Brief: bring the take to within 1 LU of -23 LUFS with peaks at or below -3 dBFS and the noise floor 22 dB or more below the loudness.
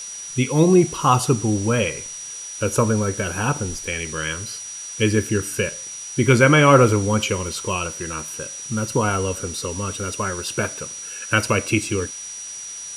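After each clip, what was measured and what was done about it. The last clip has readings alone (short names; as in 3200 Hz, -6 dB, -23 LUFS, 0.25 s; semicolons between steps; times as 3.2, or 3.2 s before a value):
steady tone 5800 Hz; tone level -32 dBFS; noise floor -34 dBFS; noise floor target -43 dBFS; loudness -21.0 LUFS; peak -1.5 dBFS; loudness target -23.0 LUFS
-> notch 5800 Hz, Q 30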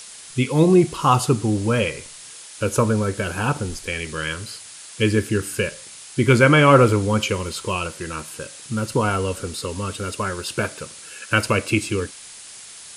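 steady tone none; noise floor -41 dBFS; noise floor target -43 dBFS
-> noise print and reduce 6 dB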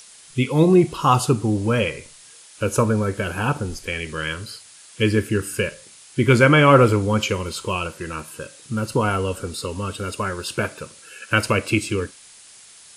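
noise floor -47 dBFS; loudness -20.5 LUFS; peak -1.5 dBFS; loudness target -23.0 LUFS
-> gain -2.5 dB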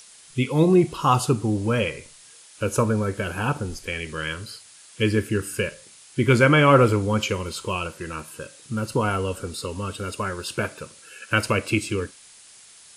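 loudness -23.0 LUFS; peak -4.0 dBFS; noise floor -49 dBFS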